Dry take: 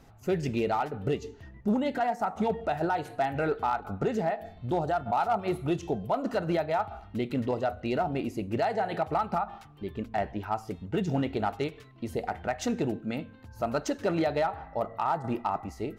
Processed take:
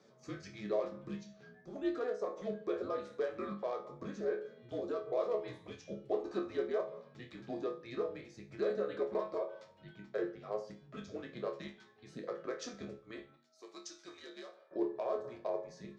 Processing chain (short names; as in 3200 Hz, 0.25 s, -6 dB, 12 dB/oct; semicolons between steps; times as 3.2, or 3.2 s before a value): 13.36–14.71 differentiator; in parallel at +1 dB: compressor, threshold -39 dBFS, peak gain reduction 15 dB; on the sum: resonator bank D2 sus4, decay 0.33 s; frequency shift -240 Hz; speaker cabinet 320–6400 Hz, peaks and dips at 360 Hz +5 dB, 990 Hz -7 dB, 1700 Hz -3 dB, 2700 Hz -10 dB; gain +3 dB